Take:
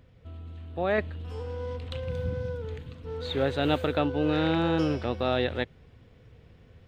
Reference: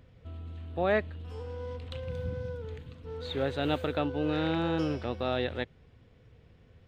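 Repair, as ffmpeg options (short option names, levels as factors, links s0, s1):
-af "asetnsamples=n=441:p=0,asendcmd='0.98 volume volume -4dB',volume=1"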